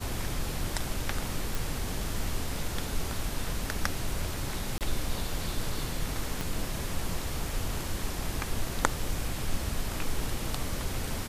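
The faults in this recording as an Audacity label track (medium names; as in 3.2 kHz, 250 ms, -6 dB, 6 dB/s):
1.550000	1.550000	pop
4.780000	4.810000	dropout 28 ms
6.410000	6.410000	pop -16 dBFS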